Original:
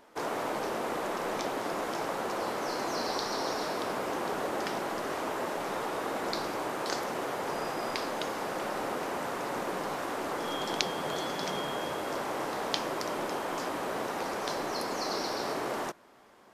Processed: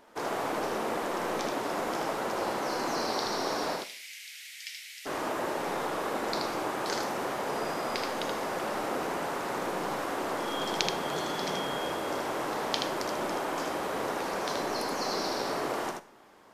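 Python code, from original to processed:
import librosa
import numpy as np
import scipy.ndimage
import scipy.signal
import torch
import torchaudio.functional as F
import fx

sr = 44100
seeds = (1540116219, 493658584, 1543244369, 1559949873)

y = fx.ellip_highpass(x, sr, hz=2100.0, order=4, stop_db=50, at=(3.75, 5.05), fade=0.02)
y = y + 10.0 ** (-4.0 / 20.0) * np.pad(y, (int(78 * sr / 1000.0), 0))[:len(y)]
y = fx.rev_schroeder(y, sr, rt60_s=0.48, comb_ms=33, drr_db=15.5)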